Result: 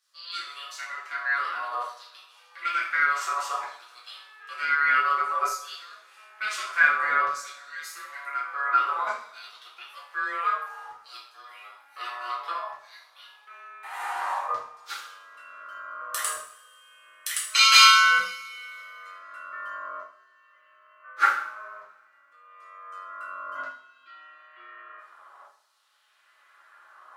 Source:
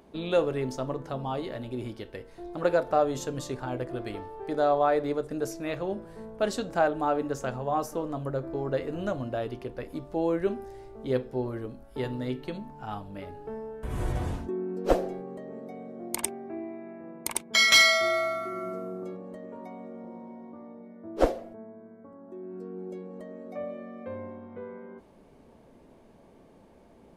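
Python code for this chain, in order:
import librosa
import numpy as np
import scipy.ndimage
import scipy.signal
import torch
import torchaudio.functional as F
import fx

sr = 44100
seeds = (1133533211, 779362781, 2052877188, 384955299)

y = x * np.sin(2.0 * np.pi * 850.0 * np.arange(len(x)) / sr)
y = fx.filter_lfo_highpass(y, sr, shape='saw_down', hz=0.55, low_hz=910.0, high_hz=5400.0, q=1.7)
y = fx.rev_double_slope(y, sr, seeds[0], early_s=0.53, late_s=2.4, knee_db=-25, drr_db=-7.0)
y = y * 10.0 ** (-1.5 / 20.0)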